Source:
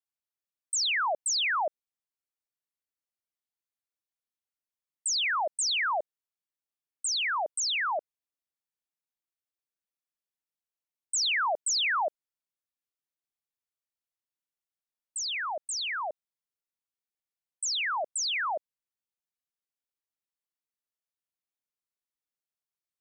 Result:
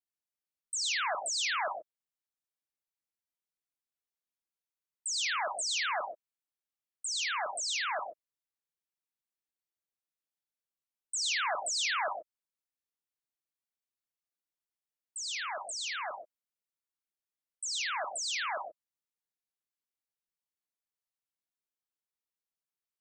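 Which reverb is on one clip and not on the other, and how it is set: gated-style reverb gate 150 ms rising, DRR 3 dB; trim -6 dB

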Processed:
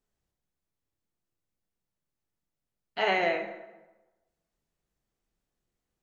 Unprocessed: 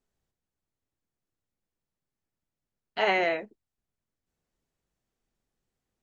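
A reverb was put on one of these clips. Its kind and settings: plate-style reverb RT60 1.1 s, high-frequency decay 0.65×, DRR 5.5 dB; trim -2 dB

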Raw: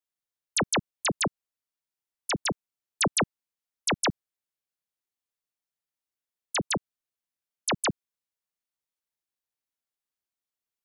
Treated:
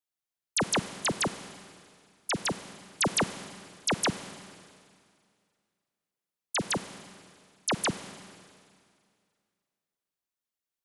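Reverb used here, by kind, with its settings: Schroeder reverb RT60 2.2 s, combs from 33 ms, DRR 11.5 dB; trim -1.5 dB

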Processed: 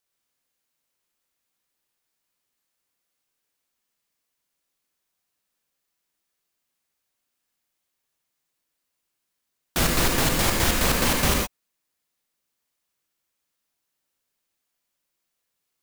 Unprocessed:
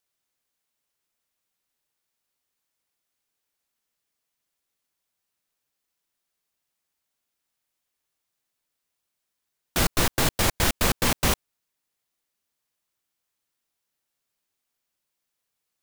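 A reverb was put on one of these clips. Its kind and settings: gated-style reverb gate 140 ms rising, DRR 2 dB

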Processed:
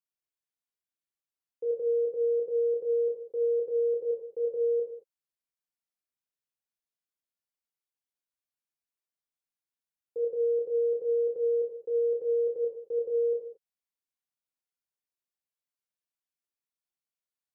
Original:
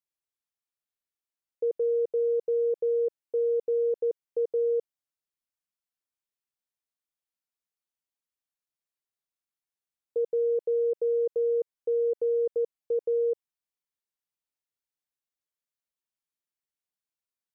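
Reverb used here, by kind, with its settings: gated-style reverb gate 250 ms falling, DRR -1.5 dB; trim -8 dB

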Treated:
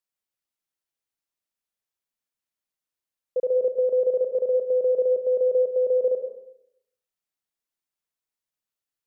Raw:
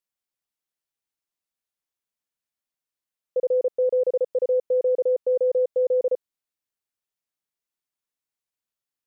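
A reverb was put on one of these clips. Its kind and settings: algorithmic reverb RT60 0.74 s, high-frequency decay 0.45×, pre-delay 70 ms, DRR 7 dB; trim -1.5 dB

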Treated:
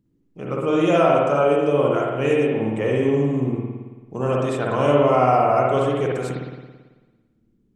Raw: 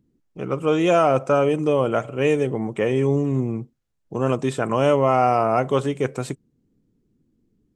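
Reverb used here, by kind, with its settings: spring tank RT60 1.3 s, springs 55 ms, chirp 45 ms, DRR -3 dB; trim -3.5 dB

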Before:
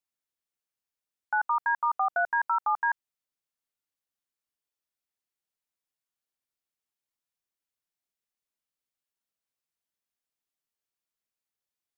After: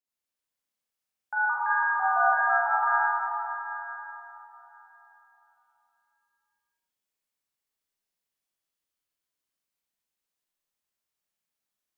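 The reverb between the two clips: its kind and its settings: Schroeder reverb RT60 3.7 s, combs from 30 ms, DRR -9 dB; trim -6 dB

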